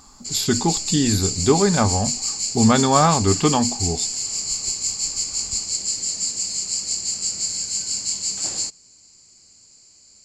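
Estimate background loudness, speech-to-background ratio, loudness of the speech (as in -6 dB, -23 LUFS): -22.5 LUFS, 2.5 dB, -20.0 LUFS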